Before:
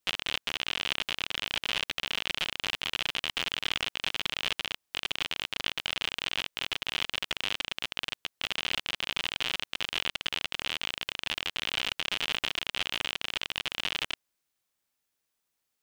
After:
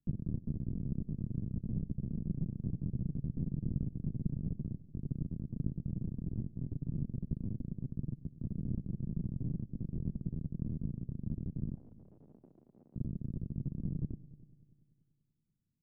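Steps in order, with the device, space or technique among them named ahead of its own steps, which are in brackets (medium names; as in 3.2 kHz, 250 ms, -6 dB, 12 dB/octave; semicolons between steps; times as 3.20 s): 11.74–12.96 s: Chebyshev band-pass 720–8900 Hz, order 2; the neighbour's flat through the wall (low-pass 230 Hz 24 dB/octave; peaking EQ 140 Hz +6 dB 0.88 oct); multi-head delay 97 ms, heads first and third, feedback 52%, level -20.5 dB; trim +13 dB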